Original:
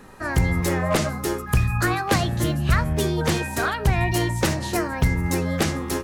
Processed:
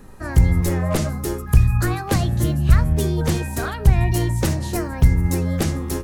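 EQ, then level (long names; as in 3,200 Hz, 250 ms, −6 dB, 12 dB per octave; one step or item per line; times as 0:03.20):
tilt shelving filter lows +4 dB, about 770 Hz
low-shelf EQ 85 Hz +11.5 dB
high-shelf EQ 5,200 Hz +10 dB
−3.5 dB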